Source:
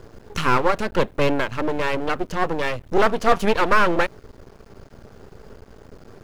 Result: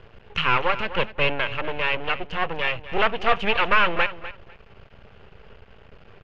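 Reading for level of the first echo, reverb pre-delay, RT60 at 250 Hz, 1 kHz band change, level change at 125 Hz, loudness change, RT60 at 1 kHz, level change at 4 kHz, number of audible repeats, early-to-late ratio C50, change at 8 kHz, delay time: −14.5 dB, no reverb audible, no reverb audible, −2.5 dB, −5.0 dB, −1.5 dB, no reverb audible, +4.5 dB, 2, no reverb audible, below −15 dB, 248 ms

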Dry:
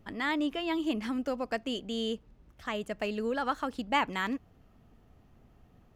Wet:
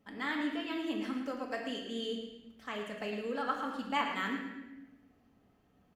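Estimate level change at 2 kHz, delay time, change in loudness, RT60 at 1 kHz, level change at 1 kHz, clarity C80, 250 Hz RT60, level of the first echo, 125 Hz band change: −3.0 dB, 110 ms, −3.5 dB, 0.90 s, −3.5 dB, 5.0 dB, 1.6 s, −9.0 dB, −5.5 dB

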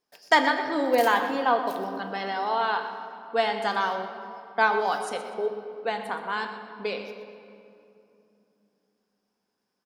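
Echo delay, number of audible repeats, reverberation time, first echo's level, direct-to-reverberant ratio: 123 ms, 2, 2.9 s, −13.0 dB, 6.0 dB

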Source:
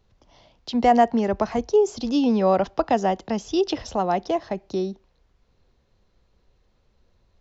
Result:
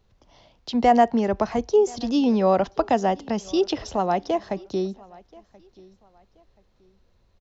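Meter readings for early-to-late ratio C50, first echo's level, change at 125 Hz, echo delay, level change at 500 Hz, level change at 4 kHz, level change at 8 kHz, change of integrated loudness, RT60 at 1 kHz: no reverb audible, −24.0 dB, 0.0 dB, 1,030 ms, 0.0 dB, 0.0 dB, can't be measured, 0.0 dB, no reverb audible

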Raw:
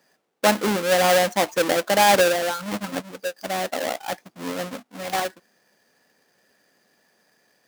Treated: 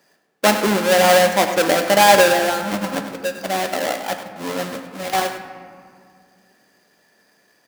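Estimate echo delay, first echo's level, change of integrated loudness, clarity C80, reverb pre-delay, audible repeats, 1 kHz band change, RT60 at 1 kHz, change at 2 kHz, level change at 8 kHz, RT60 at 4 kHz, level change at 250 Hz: 101 ms, −11.0 dB, +4.5 dB, 7.5 dB, 3 ms, 1, +5.0 dB, 2.1 s, +5.0 dB, +4.0 dB, 1.1 s, +4.5 dB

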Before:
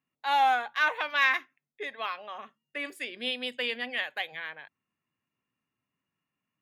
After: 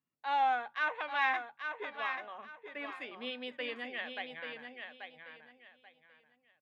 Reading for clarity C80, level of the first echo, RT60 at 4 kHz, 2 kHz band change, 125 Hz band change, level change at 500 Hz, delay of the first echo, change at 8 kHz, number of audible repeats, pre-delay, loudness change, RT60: no reverb audible, −6.5 dB, no reverb audible, −7.0 dB, can't be measured, −4.5 dB, 835 ms, below −15 dB, 3, no reverb audible, −7.0 dB, no reverb audible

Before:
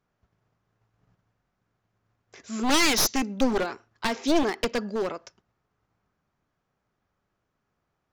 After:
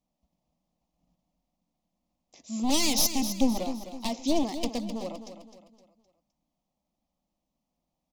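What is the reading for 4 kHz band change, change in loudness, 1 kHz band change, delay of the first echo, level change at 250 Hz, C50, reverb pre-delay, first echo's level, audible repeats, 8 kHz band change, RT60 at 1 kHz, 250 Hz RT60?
−2.5 dB, −3.0 dB, −5.5 dB, 258 ms, −1.0 dB, no reverb audible, no reverb audible, −10.5 dB, 4, −0.5 dB, no reverb audible, no reverb audible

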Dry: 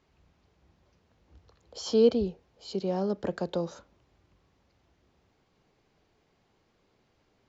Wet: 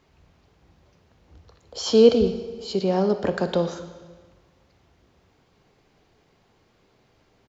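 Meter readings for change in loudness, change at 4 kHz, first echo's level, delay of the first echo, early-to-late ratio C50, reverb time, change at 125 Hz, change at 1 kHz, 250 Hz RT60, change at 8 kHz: +7.5 dB, +9.5 dB, −16.5 dB, 60 ms, 10.0 dB, 1.5 s, +7.5 dB, +8.5 dB, 1.5 s, can't be measured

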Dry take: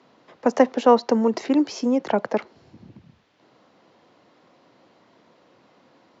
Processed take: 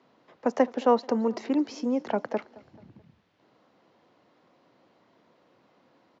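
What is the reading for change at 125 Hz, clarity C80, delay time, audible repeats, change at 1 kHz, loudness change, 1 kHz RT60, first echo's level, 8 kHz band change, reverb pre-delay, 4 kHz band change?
−6.0 dB, no reverb audible, 217 ms, 2, −6.0 dB, −6.0 dB, no reverb audible, −22.5 dB, can't be measured, no reverb audible, −8.0 dB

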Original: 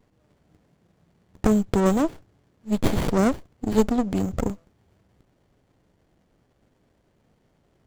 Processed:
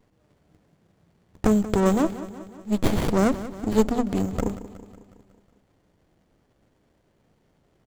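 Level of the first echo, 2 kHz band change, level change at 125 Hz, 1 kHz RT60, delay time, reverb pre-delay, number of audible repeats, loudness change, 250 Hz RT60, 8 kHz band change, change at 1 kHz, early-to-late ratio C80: −14.5 dB, +0.5 dB, −0.5 dB, no reverb audible, 183 ms, no reverb audible, 5, 0.0 dB, no reverb audible, 0.0 dB, 0.0 dB, no reverb audible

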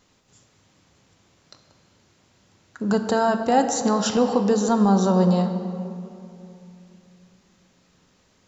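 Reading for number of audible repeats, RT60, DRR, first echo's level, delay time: no echo audible, 2.7 s, 6.0 dB, no echo audible, no echo audible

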